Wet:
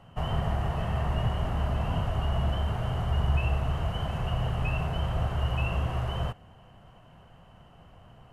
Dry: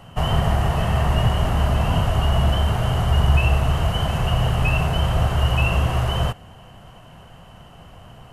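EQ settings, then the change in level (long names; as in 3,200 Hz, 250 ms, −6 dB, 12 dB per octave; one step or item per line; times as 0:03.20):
high-shelf EQ 4,100 Hz −9.5 dB
−9.0 dB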